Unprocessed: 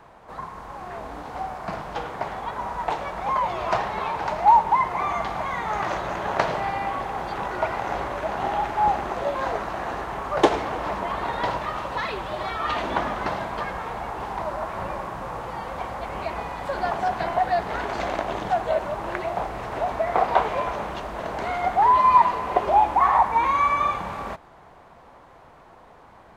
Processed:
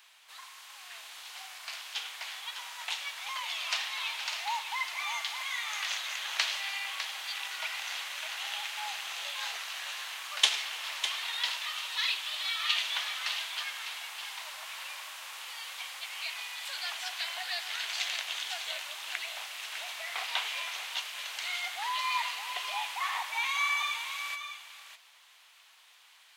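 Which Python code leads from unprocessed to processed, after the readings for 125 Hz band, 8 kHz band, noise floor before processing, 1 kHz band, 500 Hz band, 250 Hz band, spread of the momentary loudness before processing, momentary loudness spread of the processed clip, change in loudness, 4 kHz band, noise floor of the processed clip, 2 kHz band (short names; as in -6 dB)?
under -40 dB, +9.5 dB, -50 dBFS, -18.5 dB, -27.0 dB, under -35 dB, 14 LU, 10 LU, -8.5 dB, +9.0 dB, -59 dBFS, -1.5 dB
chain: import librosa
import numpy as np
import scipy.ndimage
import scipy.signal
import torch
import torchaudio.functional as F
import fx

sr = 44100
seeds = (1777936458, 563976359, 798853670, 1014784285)

y = fx.highpass_res(x, sr, hz=3000.0, q=1.9)
y = fx.high_shelf(y, sr, hz=5500.0, db=12.0)
y = y + 10.0 ** (-9.0 / 20.0) * np.pad(y, (int(603 * sr / 1000.0), 0))[:len(y)]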